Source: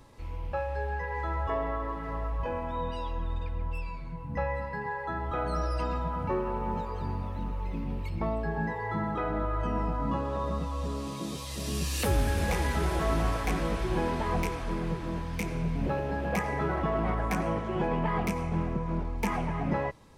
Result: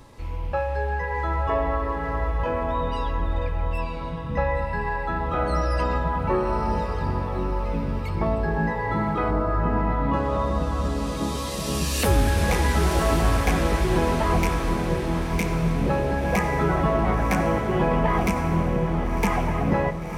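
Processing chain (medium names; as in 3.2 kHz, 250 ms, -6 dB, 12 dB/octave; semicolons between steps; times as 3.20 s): 9.30–10.12 s: low-pass 1.5 kHz -> 3.8 kHz 24 dB/octave; echo that smears into a reverb 1070 ms, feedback 45%, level -7 dB; trim +6.5 dB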